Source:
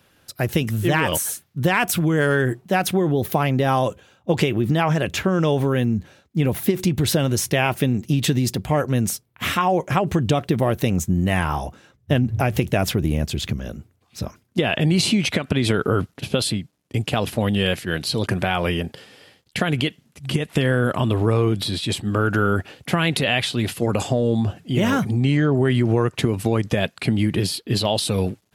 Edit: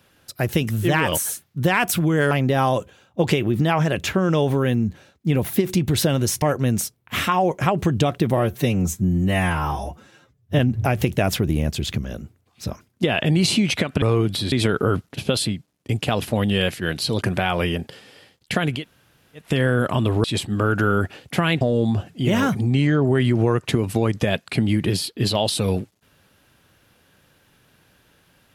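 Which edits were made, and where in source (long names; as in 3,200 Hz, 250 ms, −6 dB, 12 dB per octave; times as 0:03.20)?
0:02.31–0:03.41: remove
0:07.52–0:08.71: remove
0:10.66–0:12.14: time-stretch 1.5×
0:19.82–0:20.50: fill with room tone, crossfade 0.24 s
0:21.29–0:21.79: move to 0:15.57
0:23.16–0:24.11: remove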